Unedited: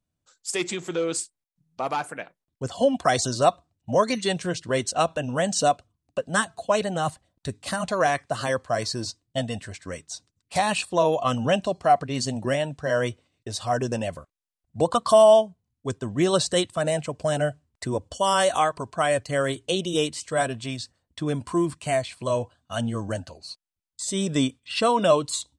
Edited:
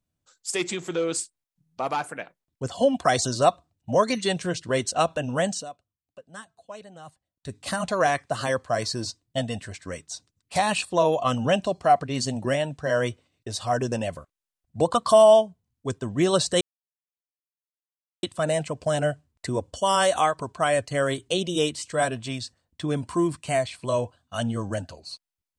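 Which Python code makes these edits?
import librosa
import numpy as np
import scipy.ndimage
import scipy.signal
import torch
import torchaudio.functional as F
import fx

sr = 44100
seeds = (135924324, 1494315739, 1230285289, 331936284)

y = fx.edit(x, sr, fx.fade_down_up(start_s=5.46, length_s=2.12, db=-18.5, fade_s=0.19),
    fx.insert_silence(at_s=16.61, length_s=1.62), tone=tone)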